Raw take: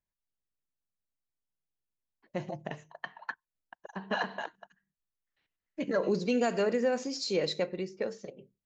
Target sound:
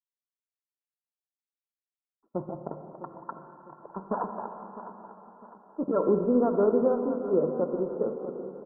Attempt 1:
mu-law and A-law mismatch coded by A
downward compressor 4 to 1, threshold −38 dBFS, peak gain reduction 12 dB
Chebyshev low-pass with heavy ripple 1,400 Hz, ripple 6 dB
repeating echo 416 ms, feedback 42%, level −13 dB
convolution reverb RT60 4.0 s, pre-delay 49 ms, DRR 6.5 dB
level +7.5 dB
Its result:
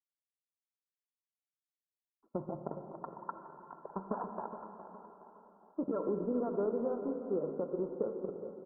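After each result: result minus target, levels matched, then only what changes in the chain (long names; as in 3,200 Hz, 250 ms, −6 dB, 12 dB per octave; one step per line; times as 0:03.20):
downward compressor: peak gain reduction +12 dB; echo 239 ms early
remove: downward compressor 4 to 1, threshold −38 dBFS, peak gain reduction 12 dB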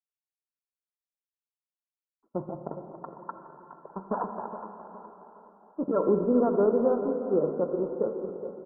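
echo 239 ms early
change: repeating echo 655 ms, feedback 42%, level −13 dB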